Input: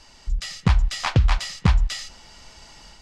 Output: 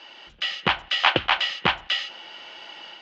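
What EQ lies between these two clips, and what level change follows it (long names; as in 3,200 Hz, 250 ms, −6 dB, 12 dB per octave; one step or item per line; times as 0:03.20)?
high-frequency loss of the air 470 metres
loudspeaker in its box 310–8,100 Hz, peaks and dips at 340 Hz +9 dB, 550 Hz +6 dB, 790 Hz +5 dB, 1,500 Hz +4 dB, 3,000 Hz +9 dB, 6,400 Hz +9 dB
parametric band 3,700 Hz +14.5 dB 2.8 octaves
0.0 dB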